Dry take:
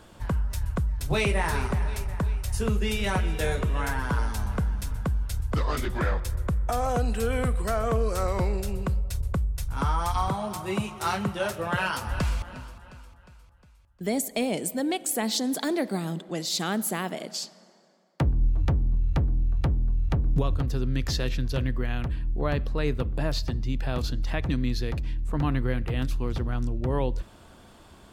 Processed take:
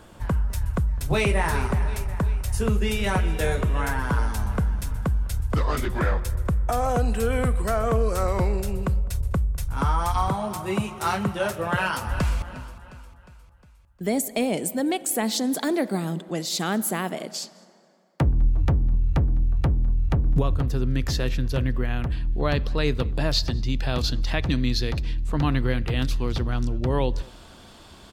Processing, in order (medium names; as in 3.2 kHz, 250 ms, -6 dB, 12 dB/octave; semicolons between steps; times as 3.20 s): peaking EQ 4.3 kHz -3 dB 1.4 oct, from 22.12 s +7 dB; echo from a far wall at 35 m, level -24 dB; trim +3 dB